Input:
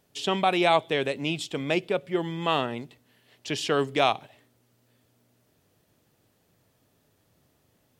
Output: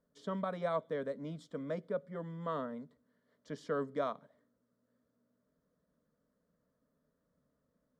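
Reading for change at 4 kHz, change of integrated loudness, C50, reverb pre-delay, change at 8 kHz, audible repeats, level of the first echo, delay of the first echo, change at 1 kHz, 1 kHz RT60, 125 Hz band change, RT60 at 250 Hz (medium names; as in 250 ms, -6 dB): -27.0 dB, -13.0 dB, no reverb, no reverb, under -20 dB, no echo, no echo, no echo, -15.0 dB, no reverb, -10.0 dB, no reverb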